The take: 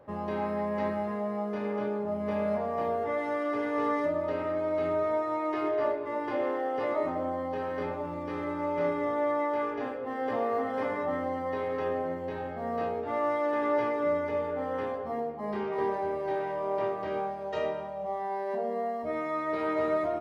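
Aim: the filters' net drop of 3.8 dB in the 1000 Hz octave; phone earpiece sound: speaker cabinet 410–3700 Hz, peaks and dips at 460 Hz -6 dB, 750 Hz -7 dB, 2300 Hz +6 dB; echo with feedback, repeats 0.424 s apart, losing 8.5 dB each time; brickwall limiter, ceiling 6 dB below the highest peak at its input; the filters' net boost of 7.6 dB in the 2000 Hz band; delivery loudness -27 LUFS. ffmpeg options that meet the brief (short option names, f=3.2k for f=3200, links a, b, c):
-af "equalizer=f=1k:t=o:g=-3.5,equalizer=f=2k:t=o:g=7,alimiter=limit=-24dB:level=0:latency=1,highpass=410,equalizer=f=460:t=q:w=4:g=-6,equalizer=f=750:t=q:w=4:g=-7,equalizer=f=2.3k:t=q:w=4:g=6,lowpass=f=3.7k:w=0.5412,lowpass=f=3.7k:w=1.3066,aecho=1:1:424|848|1272|1696:0.376|0.143|0.0543|0.0206,volume=8dB"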